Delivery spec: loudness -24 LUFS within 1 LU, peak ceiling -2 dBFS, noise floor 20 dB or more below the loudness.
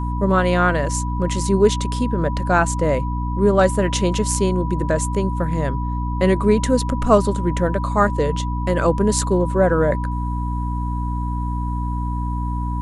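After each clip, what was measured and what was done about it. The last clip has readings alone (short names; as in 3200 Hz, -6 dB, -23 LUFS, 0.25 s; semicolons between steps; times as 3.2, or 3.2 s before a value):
hum 60 Hz; harmonics up to 300 Hz; hum level -21 dBFS; steady tone 980 Hz; tone level -29 dBFS; loudness -20.0 LUFS; peak -2.0 dBFS; loudness target -24.0 LUFS
-> de-hum 60 Hz, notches 5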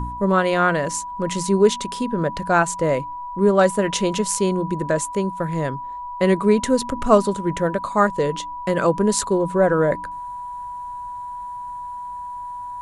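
hum none; steady tone 980 Hz; tone level -29 dBFS
-> notch 980 Hz, Q 30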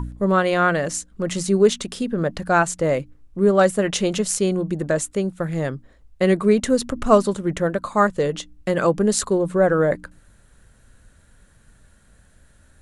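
steady tone none; loudness -20.5 LUFS; peak -2.0 dBFS; loudness target -24.0 LUFS
-> gain -3.5 dB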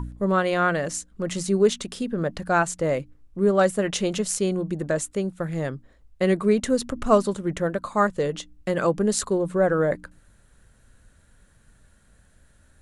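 loudness -24.0 LUFS; peak -5.5 dBFS; noise floor -58 dBFS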